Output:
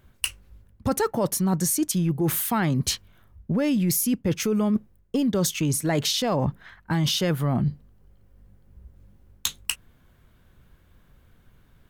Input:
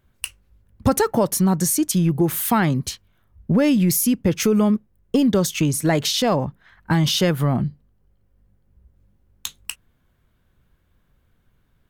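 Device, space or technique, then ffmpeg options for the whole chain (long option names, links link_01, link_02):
compression on the reversed sound: -af "areverse,acompressor=threshold=-28dB:ratio=6,areverse,volume=6.5dB"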